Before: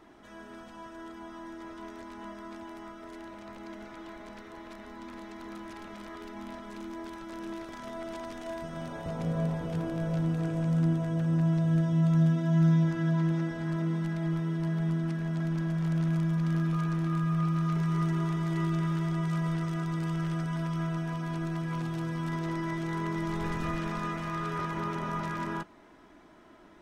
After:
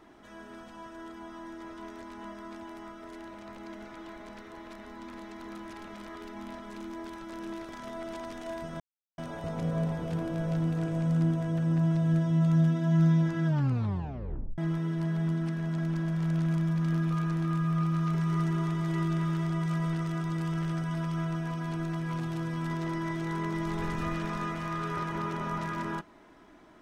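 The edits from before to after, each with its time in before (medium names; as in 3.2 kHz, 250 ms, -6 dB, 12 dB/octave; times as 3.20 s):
8.80 s: insert silence 0.38 s
13.08 s: tape stop 1.12 s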